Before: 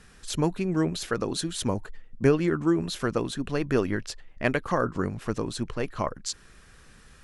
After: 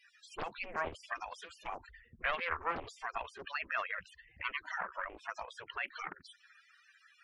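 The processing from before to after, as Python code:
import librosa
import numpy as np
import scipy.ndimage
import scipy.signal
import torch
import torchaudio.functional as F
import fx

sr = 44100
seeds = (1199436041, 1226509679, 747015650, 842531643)

p1 = fx.spec_gate(x, sr, threshold_db=-15, keep='weak')
p2 = fx.tilt_shelf(p1, sr, db=-7.5, hz=1400.0)
p3 = fx.level_steps(p2, sr, step_db=23)
p4 = p2 + F.gain(torch.from_numpy(p3), -1.0).numpy()
p5 = fx.spec_topn(p4, sr, count=32)
p6 = fx.spacing_loss(p5, sr, db_at_10k=31)
p7 = fx.doppler_dist(p6, sr, depth_ms=0.85)
y = F.gain(torch.from_numpy(p7), 4.5).numpy()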